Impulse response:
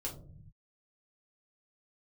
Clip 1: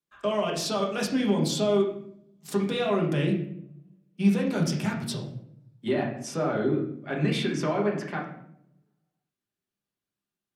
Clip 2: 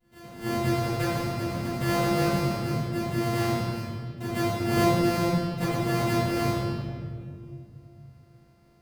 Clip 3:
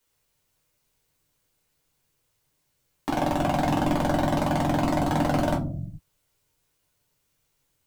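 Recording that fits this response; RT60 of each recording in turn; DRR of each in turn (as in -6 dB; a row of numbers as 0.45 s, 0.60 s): 3; 0.70 s, 2.2 s, 0.50 s; -2.5 dB, -16.0 dB, -3.0 dB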